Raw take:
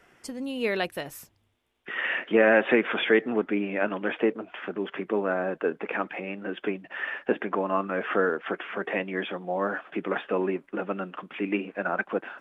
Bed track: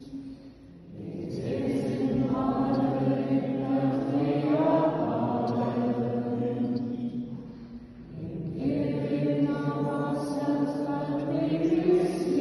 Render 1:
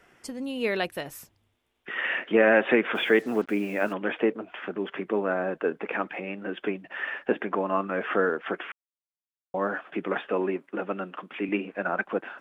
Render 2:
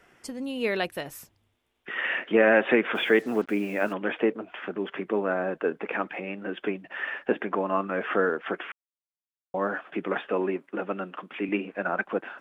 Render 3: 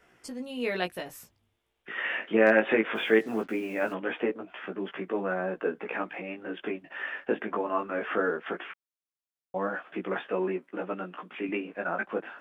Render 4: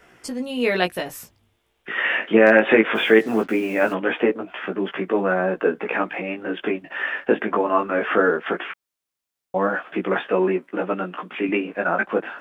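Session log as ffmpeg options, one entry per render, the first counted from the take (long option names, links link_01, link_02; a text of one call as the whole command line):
ffmpeg -i in.wav -filter_complex "[0:a]asplit=3[link_01][link_02][link_03];[link_01]afade=type=out:start_time=2.94:duration=0.02[link_04];[link_02]acrusher=bits=7:mix=0:aa=0.5,afade=type=in:start_time=2.94:duration=0.02,afade=type=out:start_time=3.92:duration=0.02[link_05];[link_03]afade=type=in:start_time=3.92:duration=0.02[link_06];[link_04][link_05][link_06]amix=inputs=3:normalize=0,asettb=1/sr,asplit=3[link_07][link_08][link_09];[link_07]atrim=end=10.294[link_10];[link_08]atrim=start=10.29:end=11.49,asetpts=PTS-STARTPTS,afade=type=in:duration=0.004:curve=qsin,afade=type=out:start_time=1.196:duration=0.004:curve=qsin,highpass=170[link_11];[link_09]atrim=start=11.486[link_12];[link_10][link_11]acrossfade=duration=0.004:curve1=hsin:curve2=qsin[link_13];[link_13][link_12]acrossfade=duration=0.004:curve1=qsin:curve2=hsin,asplit=3[link_14][link_15][link_16];[link_14]atrim=end=8.72,asetpts=PTS-STARTPTS,afade=type=out:start_time=8.716:duration=0.004:curve=hsin[link_17];[link_15]atrim=start=8.72:end=9.54,asetpts=PTS-STARTPTS,volume=0[link_18];[link_16]atrim=start=9.54,asetpts=PTS-STARTPTS,afade=type=in:duration=0.004:curve=hsin[link_19];[link_17][link_18][link_19]concat=n=3:v=0:a=1" out.wav
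ffmpeg -i in.wav -af anull out.wav
ffmpeg -i in.wav -af "flanger=delay=16:depth=2.4:speed=0.2,asoftclip=type=hard:threshold=-9.5dB" out.wav
ffmpeg -i in.wav -af "volume=9.5dB,alimiter=limit=-3dB:level=0:latency=1" out.wav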